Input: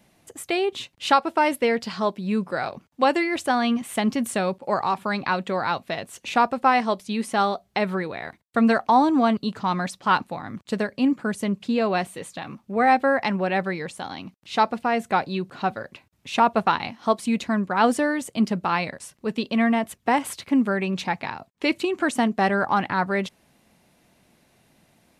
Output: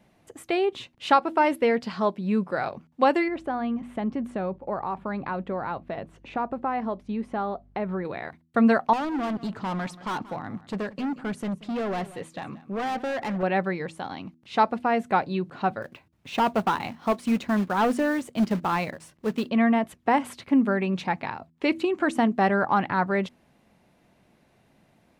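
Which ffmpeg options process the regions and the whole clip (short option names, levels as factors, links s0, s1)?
-filter_complex "[0:a]asettb=1/sr,asplit=3[s0][s1][s2];[s0]atrim=end=3.284[s3];[s1]atrim=start=3.28:end=8.05,asetpts=PTS-STARTPTS,afade=t=in:d=0.004:c=qsin,afade=t=out:st=4.766:d=0.004:c=qsin,lowpass=f=1100:p=1,acompressor=threshold=0.0447:ratio=2:attack=3.2:release=140:knee=1:detection=peak,aeval=exprs='val(0)+0.00178*(sin(2*PI*50*n/s)+sin(2*PI*2*50*n/s)/2+sin(2*PI*3*50*n/s)/3+sin(2*PI*4*50*n/s)/4+sin(2*PI*5*50*n/s)/5)':c=same[s4];[s2]atrim=start=8.046[s5];[s3][s4]acrossfade=d=0.004:c1=hsin:c2=qsin[s6];[s6][s5]acrossfade=d=0.004:c1=qsin:c2=hsin,asettb=1/sr,asplit=3[s7][s8][s9];[s7]atrim=end=8.934[s10];[s8]atrim=start=8.93:end=13.43,asetpts=PTS-STARTPTS,afade=t=in:d=0.004:c=qsin,afade=t=out:st=4.496:d=0.004:c=qsin,volume=20,asoftclip=hard,volume=0.0501,aecho=1:1:181:0.126,atrim=end_sample=198450[s11];[s9]atrim=start=13.426[s12];[s10][s11]acrossfade=d=0.004:c1=hsin:c2=qsin[s13];[s13][s12]acrossfade=d=0.004:c1=qsin:c2=hsin,asettb=1/sr,asplit=3[s14][s15][s16];[s14]atrim=end=15.824[s17];[s15]atrim=start=15.82:end=19.49,asetpts=PTS-STARTPTS,afade=t=in:d=0.004:c=qsin,afade=t=out:st=3.666:d=0.004:c=qsin,acrusher=bits=3:mode=log:mix=0:aa=0.000001,asoftclip=type=hard:threshold=0.141[s18];[s16]atrim=start=19.486[s19];[s17][s18]acrossfade=d=0.004:c1=hsin:c2=qsin[s20];[s20][s19]acrossfade=d=0.004:c1=qsin:c2=hsin,highshelf=f=3500:g=-11.5,bandreject=f=81.09:t=h:w=4,bandreject=f=162.18:t=h:w=4,bandreject=f=243.27:t=h:w=4,bandreject=f=324.36:t=h:w=4"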